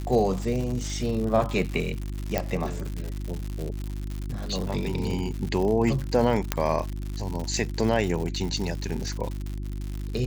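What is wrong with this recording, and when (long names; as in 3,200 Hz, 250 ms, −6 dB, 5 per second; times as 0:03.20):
surface crackle 140 per second −30 dBFS
mains hum 50 Hz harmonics 7 −32 dBFS
0:02.38: click −10 dBFS
0:06.52: click −6 dBFS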